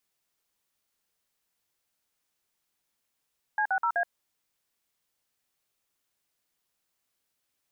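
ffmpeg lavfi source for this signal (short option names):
-f lavfi -i "aevalsrc='0.0501*clip(min(mod(t,0.126),0.075-mod(t,0.126))/0.002,0,1)*(eq(floor(t/0.126),0)*(sin(2*PI*852*mod(t,0.126))+sin(2*PI*1633*mod(t,0.126)))+eq(floor(t/0.126),1)*(sin(2*PI*770*mod(t,0.126))+sin(2*PI*1477*mod(t,0.126)))+eq(floor(t/0.126),2)*(sin(2*PI*941*mod(t,0.126))+sin(2*PI*1336*mod(t,0.126)))+eq(floor(t/0.126),3)*(sin(2*PI*697*mod(t,0.126))+sin(2*PI*1633*mod(t,0.126))))':d=0.504:s=44100"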